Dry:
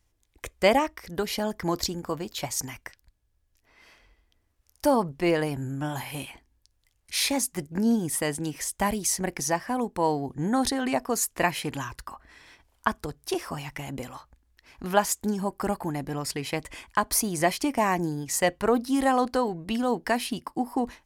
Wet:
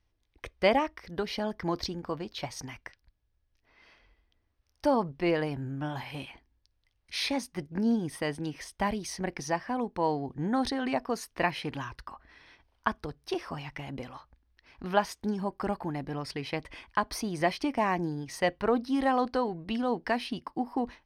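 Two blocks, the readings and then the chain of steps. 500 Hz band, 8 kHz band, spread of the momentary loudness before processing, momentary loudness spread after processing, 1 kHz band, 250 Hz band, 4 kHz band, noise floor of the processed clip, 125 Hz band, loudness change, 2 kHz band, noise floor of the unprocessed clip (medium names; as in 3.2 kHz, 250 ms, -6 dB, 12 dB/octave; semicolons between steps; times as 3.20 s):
-3.5 dB, -15.0 dB, 12 LU, 13 LU, -3.5 dB, -3.5 dB, -4.5 dB, -75 dBFS, -3.5 dB, -4.0 dB, -3.5 dB, -71 dBFS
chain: Savitzky-Golay filter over 15 samples; trim -3.5 dB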